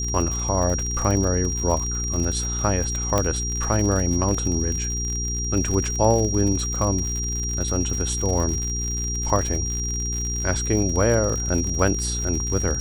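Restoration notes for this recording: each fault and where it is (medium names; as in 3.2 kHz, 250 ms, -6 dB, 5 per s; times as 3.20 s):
crackle 76 per s -26 dBFS
hum 60 Hz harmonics 7 -28 dBFS
whine 5.7 kHz -27 dBFS
3.18 s: pop -7 dBFS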